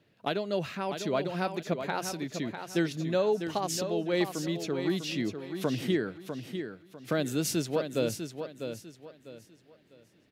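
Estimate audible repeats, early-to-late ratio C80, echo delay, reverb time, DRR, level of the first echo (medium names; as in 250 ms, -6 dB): 3, no reverb, 649 ms, no reverb, no reverb, -8.0 dB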